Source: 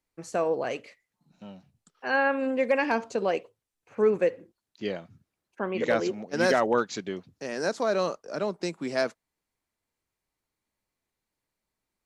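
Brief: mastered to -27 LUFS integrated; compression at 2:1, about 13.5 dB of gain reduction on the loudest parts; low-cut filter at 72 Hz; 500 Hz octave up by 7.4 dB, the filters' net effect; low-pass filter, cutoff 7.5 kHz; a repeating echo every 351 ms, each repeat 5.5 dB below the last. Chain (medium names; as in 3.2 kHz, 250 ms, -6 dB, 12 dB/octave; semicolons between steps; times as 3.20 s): high-pass 72 Hz; low-pass 7.5 kHz; peaking EQ 500 Hz +8.5 dB; compression 2:1, threshold -37 dBFS; feedback delay 351 ms, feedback 53%, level -5.5 dB; trim +6 dB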